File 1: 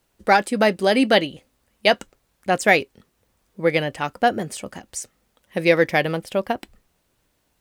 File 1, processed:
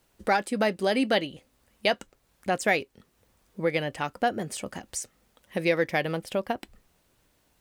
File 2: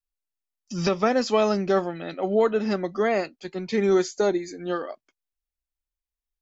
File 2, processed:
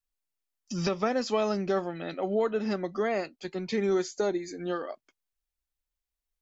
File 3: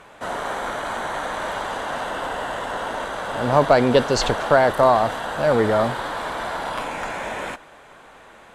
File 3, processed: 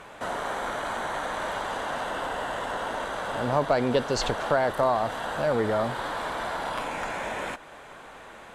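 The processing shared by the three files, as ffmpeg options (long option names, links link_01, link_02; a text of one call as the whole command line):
ffmpeg -i in.wav -af "acompressor=threshold=-37dB:ratio=1.5,volume=1dB" out.wav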